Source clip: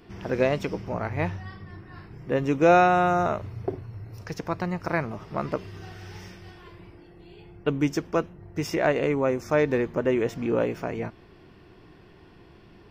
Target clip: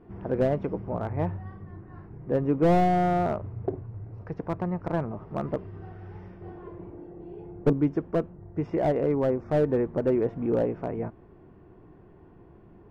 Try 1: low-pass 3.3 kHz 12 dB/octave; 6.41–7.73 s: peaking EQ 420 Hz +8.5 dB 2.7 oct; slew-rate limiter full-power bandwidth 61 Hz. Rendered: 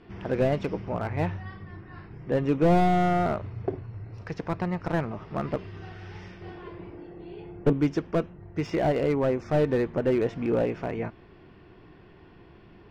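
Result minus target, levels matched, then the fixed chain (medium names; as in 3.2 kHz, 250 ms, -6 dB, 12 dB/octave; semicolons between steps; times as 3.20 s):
4 kHz band +6.5 dB
low-pass 1 kHz 12 dB/octave; 6.41–7.73 s: peaking EQ 420 Hz +8.5 dB 2.7 oct; slew-rate limiter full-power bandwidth 61 Hz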